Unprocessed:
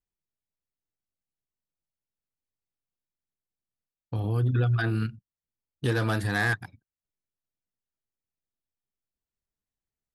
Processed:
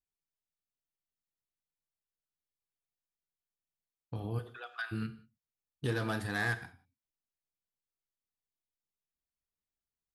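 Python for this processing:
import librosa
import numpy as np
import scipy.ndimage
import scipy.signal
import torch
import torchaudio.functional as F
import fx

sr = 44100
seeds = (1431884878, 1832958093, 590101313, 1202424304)

y = fx.highpass(x, sr, hz=fx.line((4.38, 440.0), (4.91, 1100.0)), slope=24, at=(4.38, 4.91), fade=0.02)
y = fx.rev_gated(y, sr, seeds[0], gate_ms=210, shape='falling', drr_db=9.5)
y = F.gain(torch.from_numpy(y), -7.0).numpy()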